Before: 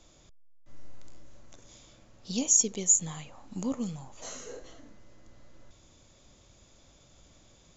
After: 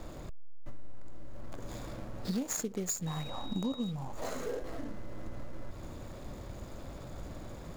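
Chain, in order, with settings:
running median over 15 samples
downward compressor 6 to 1, threshold −50 dBFS, peak gain reduction 21 dB
0:03.06–0:03.90: steady tone 3,800 Hz −63 dBFS
level +16.5 dB

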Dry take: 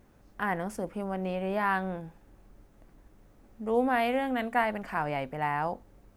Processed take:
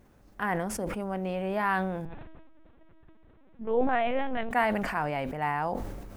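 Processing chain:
0:02.05–0:04.51: linear-prediction vocoder at 8 kHz pitch kept
level that may fall only so fast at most 33 dB per second

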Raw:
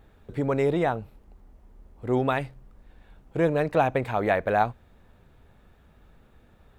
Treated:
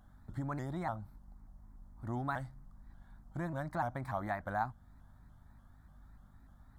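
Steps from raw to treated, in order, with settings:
downward compressor 1.5 to 1, threshold −32 dBFS, peak gain reduction 6 dB
phaser with its sweep stopped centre 1,100 Hz, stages 4
mains hum 50 Hz, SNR 20 dB
pitch modulation by a square or saw wave saw up 3.4 Hz, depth 160 cents
level −4 dB

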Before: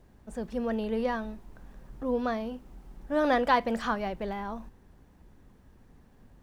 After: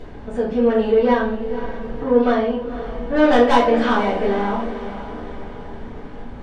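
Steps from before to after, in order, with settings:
low-pass filter 3,500 Hz 12 dB per octave
low-shelf EQ 130 Hz −11.5 dB
in parallel at +1 dB: upward compression, threshold −35 dBFS
on the sum: soft clipping −17.5 dBFS, distortion −11 dB
feedback delay with all-pass diffusion 499 ms, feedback 53%, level −12 dB
rectangular room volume 43 cubic metres, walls mixed, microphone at 2 metres
level −3.5 dB

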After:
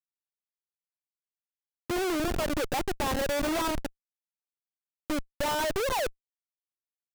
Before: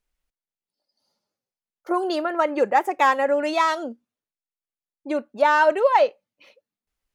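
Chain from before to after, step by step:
octave-band graphic EQ 125/1,000/2,000 Hz −7/−7/−5 dB
bit-depth reduction 6 bits, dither none
comparator with hysteresis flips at −27 dBFS

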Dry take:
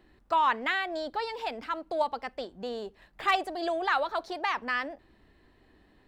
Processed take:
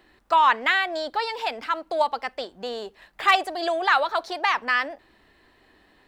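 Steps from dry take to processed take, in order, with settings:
low-shelf EQ 390 Hz −12 dB
level +8.5 dB

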